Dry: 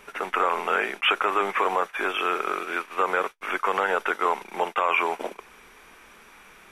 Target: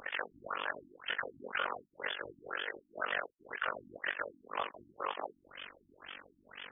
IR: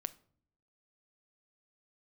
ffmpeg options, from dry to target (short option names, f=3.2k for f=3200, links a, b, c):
-filter_complex "[0:a]crystalizer=i=8:c=0,asplit=2[a][b];[b]asetrate=37084,aresample=44100,atempo=1.18921,volume=-6dB[c];[a][c]amix=inputs=2:normalize=0,asoftclip=type=tanh:threshold=-14dB,highshelf=f=6.8k:g=12,asetrate=57191,aresample=44100,atempo=0.771105,alimiter=limit=-16dB:level=0:latency=1:release=31,highpass=f=89:p=1,tremolo=f=47:d=1,acompressor=threshold=-38dB:ratio=3,afftfilt=real='re*lt(b*sr/1024,320*pow(3600/320,0.5+0.5*sin(2*PI*2*pts/sr)))':imag='im*lt(b*sr/1024,320*pow(3600/320,0.5+0.5*sin(2*PI*2*pts/sr)))':win_size=1024:overlap=0.75,volume=4.5dB"